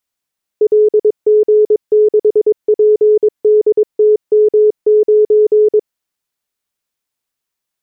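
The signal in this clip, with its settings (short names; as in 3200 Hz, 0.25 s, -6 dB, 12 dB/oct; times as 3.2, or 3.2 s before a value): Morse "LG6PDTM9" 22 wpm 425 Hz -5.5 dBFS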